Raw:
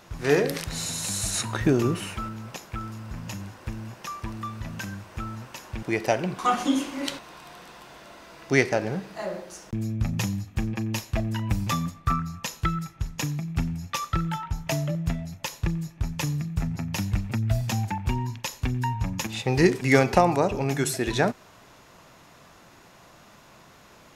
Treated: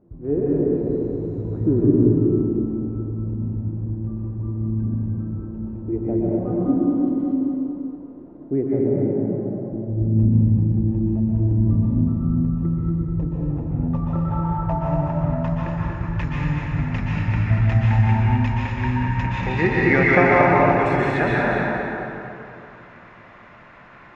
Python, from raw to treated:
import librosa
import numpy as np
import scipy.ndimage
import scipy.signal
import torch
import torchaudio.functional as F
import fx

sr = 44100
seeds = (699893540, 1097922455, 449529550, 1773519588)

p1 = fx.filter_sweep_lowpass(x, sr, from_hz=330.0, to_hz=2000.0, start_s=12.44, end_s=16.3, q=2.1)
p2 = p1 + fx.echo_feedback(p1, sr, ms=236, feedback_pct=36, wet_db=-5.0, dry=0)
p3 = fx.rev_plate(p2, sr, seeds[0], rt60_s=2.8, hf_ratio=0.55, predelay_ms=110, drr_db=-5.5)
y = F.gain(torch.from_numpy(p3), -3.5).numpy()